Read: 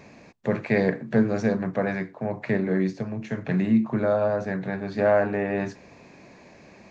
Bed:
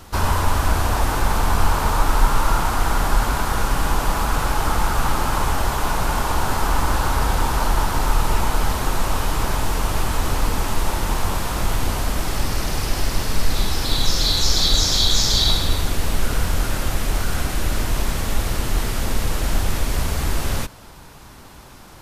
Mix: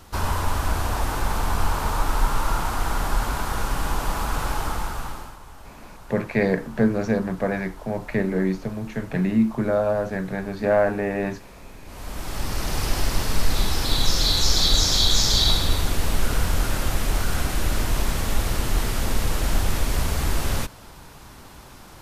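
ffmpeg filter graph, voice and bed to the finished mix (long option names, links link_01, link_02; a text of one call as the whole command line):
ffmpeg -i stem1.wav -i stem2.wav -filter_complex "[0:a]adelay=5650,volume=1dB[link_01];[1:a]volume=17dB,afade=type=out:start_time=4.53:duration=0.84:silence=0.11885,afade=type=in:start_time=11.85:duration=1:silence=0.0794328[link_02];[link_01][link_02]amix=inputs=2:normalize=0" out.wav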